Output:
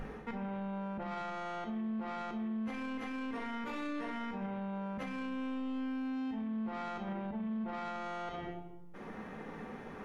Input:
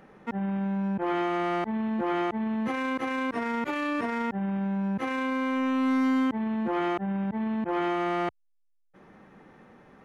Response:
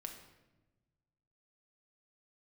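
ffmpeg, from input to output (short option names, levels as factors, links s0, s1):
-filter_complex "[0:a]aeval=exprs='val(0)+0.00562*(sin(2*PI*50*n/s)+sin(2*PI*2*50*n/s)/2+sin(2*PI*3*50*n/s)/3+sin(2*PI*4*50*n/s)/4+sin(2*PI*5*50*n/s)/5)':c=same,asoftclip=type=tanh:threshold=0.0376[s0];[1:a]atrim=start_sample=2205,asetrate=57330,aresample=44100[s1];[s0][s1]afir=irnorm=-1:irlink=0,areverse,acompressor=threshold=0.00501:ratio=6,areverse,bandreject=f=50:t=h:w=6,bandreject=f=100:t=h:w=6,bandreject=f=150:t=h:w=6,bandreject=f=200:t=h:w=6,bandreject=f=250:t=h:w=6,bandreject=f=300:t=h:w=6,bandreject=f=350:t=h:w=6,alimiter=level_in=12.6:limit=0.0631:level=0:latency=1:release=65,volume=0.0794,volume=4.73"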